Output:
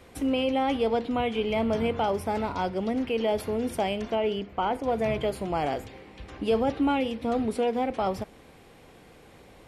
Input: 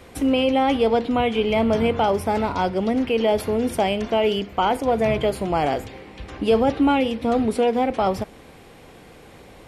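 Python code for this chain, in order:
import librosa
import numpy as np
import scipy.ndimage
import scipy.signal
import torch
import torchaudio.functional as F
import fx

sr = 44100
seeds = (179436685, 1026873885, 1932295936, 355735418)

y = fx.high_shelf(x, sr, hz=4100.0, db=-10.5, at=(4.15, 4.84))
y = y * librosa.db_to_amplitude(-6.5)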